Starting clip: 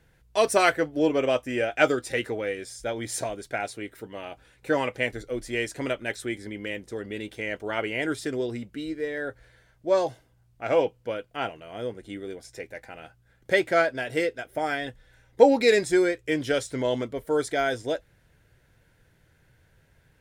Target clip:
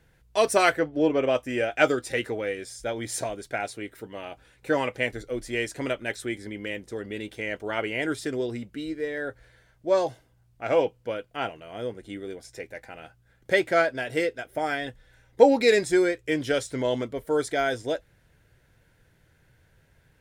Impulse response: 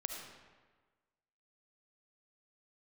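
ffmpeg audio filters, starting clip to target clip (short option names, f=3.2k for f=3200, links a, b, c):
-filter_complex "[0:a]asettb=1/sr,asplit=3[a][b][c];[a]atrim=end=0.794[d];[b]atrim=start=0.79:end=1.35,asetpts=PTS-STARTPTS,afade=t=in:d=0.004:c=qsin,afade=t=out:st=0.556:d=0.004:c=qsin,aemphasis=mode=reproduction:type=50fm[e];[c]atrim=start=1.346[f];[d][e]acrossfade=d=0.004:c1=hsin:c2=qsin[g];[g][f]acrossfade=d=0.004:c1=qsin:c2=hsin"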